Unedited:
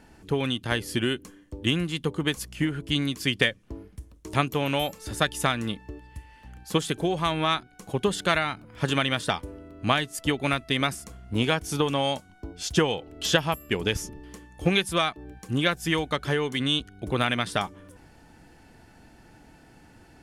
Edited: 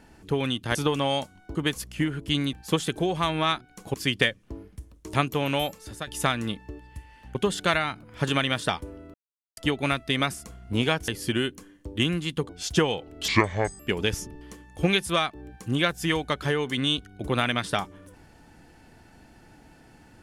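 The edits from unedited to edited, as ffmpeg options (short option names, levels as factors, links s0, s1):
-filter_complex "[0:a]asplit=13[s0][s1][s2][s3][s4][s5][s6][s7][s8][s9][s10][s11][s12];[s0]atrim=end=0.752[s13];[s1]atrim=start=11.688:end=12.492[s14];[s2]atrim=start=2.158:end=3.142[s15];[s3]atrim=start=6.548:end=7.962[s16];[s4]atrim=start=3.138:end=5.27,asetpts=PTS-STARTPTS,afade=t=out:st=1.712:d=0.42:silence=0.188365[s17];[s5]atrim=start=5.27:end=6.552,asetpts=PTS-STARTPTS,afade=t=in:d=0.004:c=hsin:silence=0.188365[s18];[s6]atrim=start=7.958:end=9.75,asetpts=PTS-STARTPTS,afade=t=out:st=1.788:d=0.004:c=hsin[s19];[s7]atrim=start=9.75:end=10.18,asetpts=PTS-STARTPTS,volume=0[s20];[s8]atrim=start=10.18:end=11.692,asetpts=PTS-STARTPTS,afade=t=in:d=0.004:c=hsin[s21];[s9]atrim=start=0.748:end=2.162[s22];[s10]atrim=start=12.488:end=13.284[s23];[s11]atrim=start=13.28:end=13.62,asetpts=PTS-STARTPTS,asetrate=29106,aresample=44100,atrim=end_sample=22718,asetpts=PTS-STARTPTS[s24];[s12]atrim=start=13.616[s25];[s13][s14]acrossfade=d=0.004:c1=hsin:c2=hsin[s26];[s26][s15]acrossfade=d=0.004:c1=hsin:c2=hsin[s27];[s27][s16]acrossfade=d=0.004:c1=hsin:c2=hsin[s28];[s17][s18]concat=n=2:v=0:a=1[s29];[s28][s29]acrossfade=d=0.004:c1=hsin:c2=hsin[s30];[s19][s20][s21]concat=n=3:v=0:a=1[s31];[s30][s31]acrossfade=d=0.004:c1=hsin:c2=hsin[s32];[s32][s22]acrossfade=d=0.004:c1=hsin:c2=hsin[s33];[s33][s23]acrossfade=d=0.004:c1=hsin:c2=hsin[s34];[s34][s24]acrossfade=d=0.004:c1=hsin:c2=hsin[s35];[s35][s25]acrossfade=d=0.004:c1=hsin:c2=hsin"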